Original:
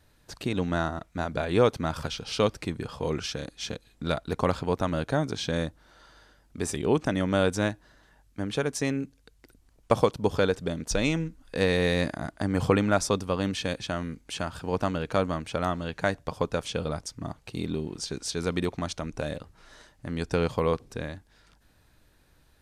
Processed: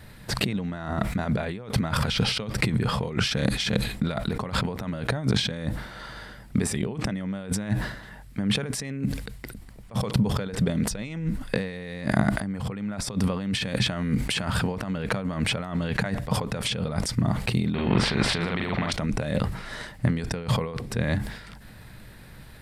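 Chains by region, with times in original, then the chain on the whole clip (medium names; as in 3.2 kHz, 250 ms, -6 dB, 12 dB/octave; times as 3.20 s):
17.74–18.92 s: distance through air 480 m + doubling 42 ms -3 dB + spectrum-flattening compressor 2:1
whole clip: compressor with a negative ratio -38 dBFS, ratio -1; graphic EQ with 31 bands 125 Hz +9 dB, 200 Hz +10 dB, 315 Hz -3 dB, 2 kHz +6 dB, 6.3 kHz -8 dB; decay stretcher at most 79 dB/s; trim +6 dB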